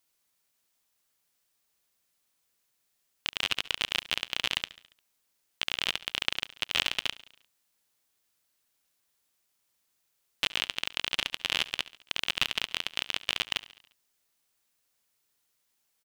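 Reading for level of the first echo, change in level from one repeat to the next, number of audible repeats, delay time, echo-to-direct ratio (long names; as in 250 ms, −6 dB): −18.5 dB, −5.0 dB, 4, 70 ms, −17.0 dB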